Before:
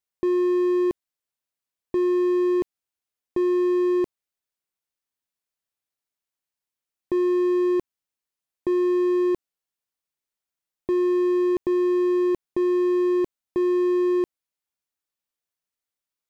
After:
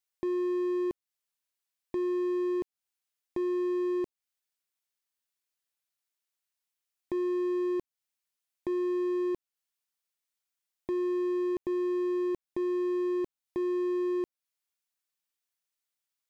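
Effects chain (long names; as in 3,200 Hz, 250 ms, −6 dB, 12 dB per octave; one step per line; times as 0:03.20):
one half of a high-frequency compander encoder only
level −8.5 dB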